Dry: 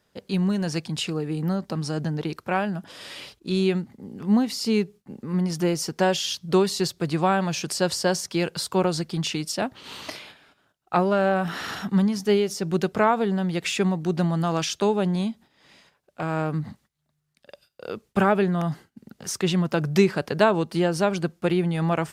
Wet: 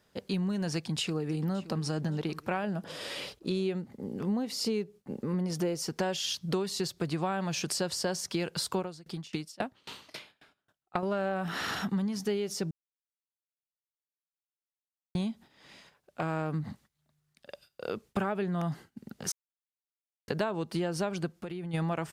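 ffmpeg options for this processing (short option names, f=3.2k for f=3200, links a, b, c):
-filter_complex "[0:a]asplit=2[a][b];[b]afade=t=in:st=0.72:d=0.01,afade=t=out:st=1.82:d=0.01,aecho=0:1:570|1140|1710:0.133352|0.0400056|0.0120017[c];[a][c]amix=inputs=2:normalize=0,asettb=1/sr,asplit=3[d][e][f];[d]atrim=end=2.644[g];[e]atrim=start=2.64:end=5.81,asetpts=PTS-STARTPTS,afade=t=in:d=0.004:c=qsin,afade=t=out:st=3.166:d=0.004:c=qsin,equalizer=f=500:w=1.8:g=7[h];[f]atrim=start=5.806[i];[g][h]acrossfade=d=0.004:c1=hsin:c2=qsin[j];[j][i]acrossfade=d=0.004:c1=qsin:c2=hsin,asettb=1/sr,asplit=3[k][l][m];[k]atrim=end=8.794[n];[l]atrim=start=8.79:end=11.03,asetpts=PTS-STARTPTS,afade=t=in:d=0.004:c=qsin,afade=t=out:st=2.236:d=0.004:c=qsin,aeval=exprs='val(0)*pow(10,-28*if(lt(mod(3.7*n/s,1),2*abs(3.7)/1000),1-mod(3.7*n/s,1)/(2*abs(3.7)/1000),(mod(3.7*n/s,1)-2*abs(3.7)/1000)/(1-2*abs(3.7)/1000))/20)':c=same[o];[m]atrim=start=11.026[p];[n][o]acrossfade=d=0.004:c1=hsin:c2=qsin[q];[q][p]acrossfade=d=0.004:c1=qsin:c2=hsin,asplit=3[r][s][t];[r]afade=t=out:st=21.32:d=0.02[u];[s]acompressor=threshold=-35dB:ratio=10:attack=3.2:release=140:knee=1:detection=peak,afade=t=in:st=21.32:d=0.02,afade=t=out:st=21.73:d=0.02[v];[t]afade=t=in:st=21.73:d=0.02[w];[u][v][w]amix=inputs=3:normalize=0,asplit=5[x][y][z][aa][ab];[x]atrim=end=12.71,asetpts=PTS-STARTPTS,afade=t=out:st=12.706:d=0.004:c=hsin[ac];[y]atrim=start=12.71:end=15.15,asetpts=PTS-STARTPTS,volume=0[ad];[z]atrim=start=15.15:end=19.32,asetpts=PTS-STARTPTS,afade=t=in:d=0.004:c=hsin,afade=t=out:st=4.166:d=0.004:c=hsin[ae];[aa]atrim=start=19.32:end=20.28,asetpts=PTS-STARTPTS,volume=0[af];[ab]atrim=start=20.28,asetpts=PTS-STARTPTS,afade=t=in:d=0.004:c=hsin[ag];[ac][ad][ae][af][ag]concat=n=5:v=0:a=1,acompressor=threshold=-29dB:ratio=5"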